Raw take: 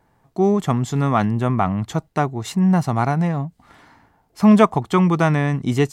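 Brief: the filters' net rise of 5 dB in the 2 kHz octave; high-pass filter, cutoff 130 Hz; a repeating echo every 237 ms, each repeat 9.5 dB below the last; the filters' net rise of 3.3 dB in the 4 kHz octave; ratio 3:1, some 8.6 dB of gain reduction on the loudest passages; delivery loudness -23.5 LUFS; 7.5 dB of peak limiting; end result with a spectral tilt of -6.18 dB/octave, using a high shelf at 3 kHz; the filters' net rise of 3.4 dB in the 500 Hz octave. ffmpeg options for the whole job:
-af "highpass=130,equalizer=f=500:t=o:g=4.5,equalizer=f=2000:t=o:g=7,highshelf=f=3000:g=-5.5,equalizer=f=4000:t=o:g=5.5,acompressor=threshold=0.141:ratio=3,alimiter=limit=0.266:level=0:latency=1,aecho=1:1:237|474|711|948:0.335|0.111|0.0365|0.012"

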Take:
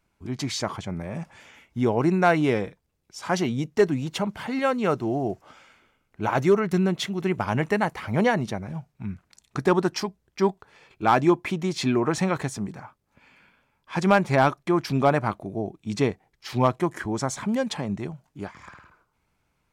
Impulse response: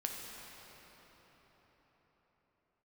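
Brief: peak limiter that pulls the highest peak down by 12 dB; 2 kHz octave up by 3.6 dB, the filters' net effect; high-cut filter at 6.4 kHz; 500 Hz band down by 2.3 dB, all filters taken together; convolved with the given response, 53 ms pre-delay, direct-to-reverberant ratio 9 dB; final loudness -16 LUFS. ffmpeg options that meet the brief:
-filter_complex "[0:a]lowpass=6400,equalizer=f=500:t=o:g=-3.5,equalizer=f=2000:t=o:g=5,alimiter=limit=0.126:level=0:latency=1,asplit=2[s0][s1];[1:a]atrim=start_sample=2205,adelay=53[s2];[s1][s2]afir=irnorm=-1:irlink=0,volume=0.299[s3];[s0][s3]amix=inputs=2:normalize=0,volume=4.73"

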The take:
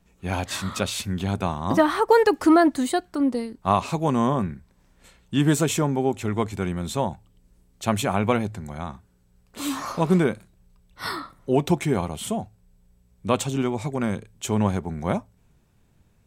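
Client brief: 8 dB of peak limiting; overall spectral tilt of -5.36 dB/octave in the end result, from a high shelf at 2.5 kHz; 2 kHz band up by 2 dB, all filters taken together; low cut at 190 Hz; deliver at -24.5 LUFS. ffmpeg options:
-af "highpass=190,equalizer=f=2000:t=o:g=5,highshelf=f=2500:g=-5.5,volume=1.41,alimiter=limit=0.299:level=0:latency=1"

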